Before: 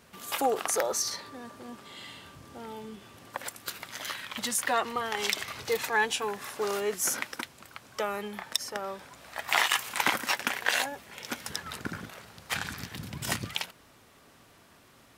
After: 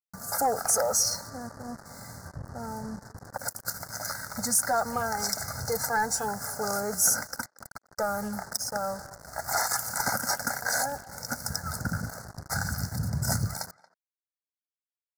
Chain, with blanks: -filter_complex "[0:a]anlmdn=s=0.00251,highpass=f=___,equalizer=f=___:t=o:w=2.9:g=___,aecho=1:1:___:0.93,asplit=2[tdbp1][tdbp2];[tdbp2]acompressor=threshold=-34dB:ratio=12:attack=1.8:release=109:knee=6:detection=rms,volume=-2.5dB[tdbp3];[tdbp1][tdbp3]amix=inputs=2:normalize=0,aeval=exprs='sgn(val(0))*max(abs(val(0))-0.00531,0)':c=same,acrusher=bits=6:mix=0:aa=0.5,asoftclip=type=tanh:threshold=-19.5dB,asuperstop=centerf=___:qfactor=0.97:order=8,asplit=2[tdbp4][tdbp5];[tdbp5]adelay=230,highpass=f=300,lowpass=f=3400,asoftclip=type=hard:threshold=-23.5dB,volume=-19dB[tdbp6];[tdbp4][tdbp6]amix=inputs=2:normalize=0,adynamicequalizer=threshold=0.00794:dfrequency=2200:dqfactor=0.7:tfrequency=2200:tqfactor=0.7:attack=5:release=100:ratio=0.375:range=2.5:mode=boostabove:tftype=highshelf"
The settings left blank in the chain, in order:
48, 72, 9.5, 1.4, 2900